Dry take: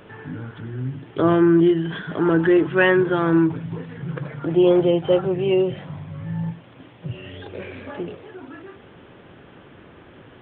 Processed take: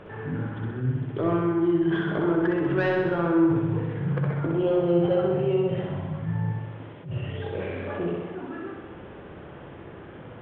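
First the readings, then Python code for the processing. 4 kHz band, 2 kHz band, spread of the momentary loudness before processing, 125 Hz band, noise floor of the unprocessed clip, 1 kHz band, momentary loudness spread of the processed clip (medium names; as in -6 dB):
no reading, -7.5 dB, 19 LU, 0.0 dB, -47 dBFS, -4.0 dB, 21 LU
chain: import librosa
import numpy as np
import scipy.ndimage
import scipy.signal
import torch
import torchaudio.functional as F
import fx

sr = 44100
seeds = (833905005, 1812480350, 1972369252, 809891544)

p1 = fx.lowpass(x, sr, hz=1300.0, slope=6)
p2 = fx.peak_eq(p1, sr, hz=260.0, db=-3.5, octaves=0.34)
p3 = fx.hum_notches(p2, sr, base_hz=60, count=6)
p4 = fx.over_compress(p3, sr, threshold_db=-27.0, ratio=-0.5)
p5 = p3 + (p4 * librosa.db_to_amplitude(-1.0))
p6 = 10.0 ** (-10.0 / 20.0) * np.tanh(p5 / 10.0 ** (-10.0 / 20.0))
p7 = fx.room_flutter(p6, sr, wall_m=10.9, rt60_s=1.2)
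p8 = fx.attack_slew(p7, sr, db_per_s=150.0)
y = p8 * librosa.db_to_amplitude(-6.0)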